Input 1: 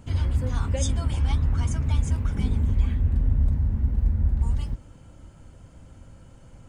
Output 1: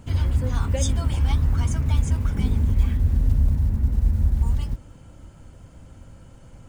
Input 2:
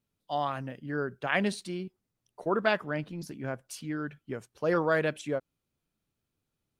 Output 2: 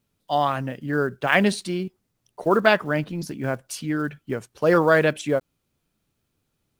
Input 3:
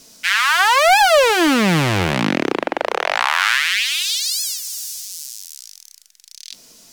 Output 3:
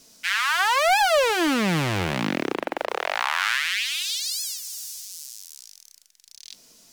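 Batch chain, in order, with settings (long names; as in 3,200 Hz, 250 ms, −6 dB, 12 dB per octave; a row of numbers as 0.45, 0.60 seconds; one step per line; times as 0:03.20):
one scale factor per block 7 bits
loudness normalisation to −23 LKFS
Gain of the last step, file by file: +2.5, +9.0, −7.0 decibels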